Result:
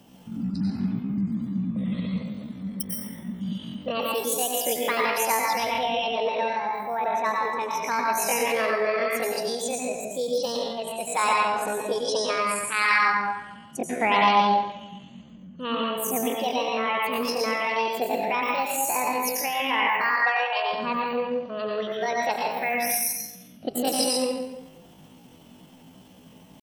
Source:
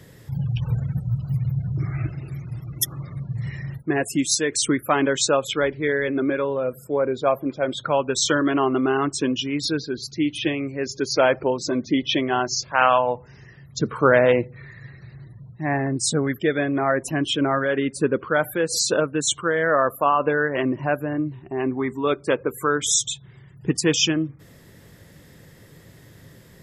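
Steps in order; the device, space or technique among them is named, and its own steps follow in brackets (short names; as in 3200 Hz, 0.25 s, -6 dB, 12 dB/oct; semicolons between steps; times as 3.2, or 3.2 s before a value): 20.03–20.74 steep high-pass 310 Hz 36 dB/oct; plate-style reverb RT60 1 s, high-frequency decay 0.7×, pre-delay 80 ms, DRR -2.5 dB; chipmunk voice (pitch shift +8.5 st); gain -7 dB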